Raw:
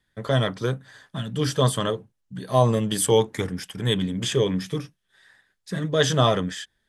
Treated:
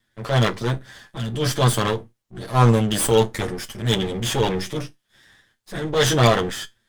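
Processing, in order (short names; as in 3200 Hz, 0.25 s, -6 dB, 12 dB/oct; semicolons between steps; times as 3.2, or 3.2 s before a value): minimum comb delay 8.8 ms; transient shaper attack -6 dB, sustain +2 dB; resonator 59 Hz, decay 0.18 s, harmonics all, mix 50%; gain +7 dB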